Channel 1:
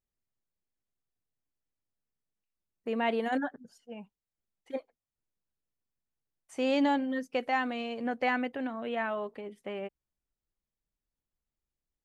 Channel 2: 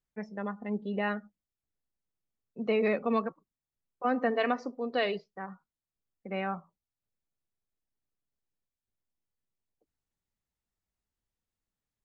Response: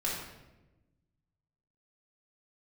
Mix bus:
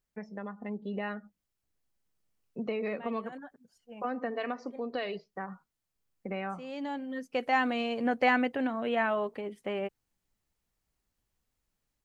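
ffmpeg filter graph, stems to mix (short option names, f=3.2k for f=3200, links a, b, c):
-filter_complex "[0:a]volume=0dB[a];[1:a]acompressor=threshold=-41dB:ratio=3,volume=2dB,asplit=2[b][c];[c]apad=whole_len=531320[d];[a][d]sidechaincompress=threshold=-53dB:ratio=16:attack=11:release=846[e];[e][b]amix=inputs=2:normalize=0,bandreject=f=3.6k:w=28,dynaudnorm=f=480:g=3:m=4dB"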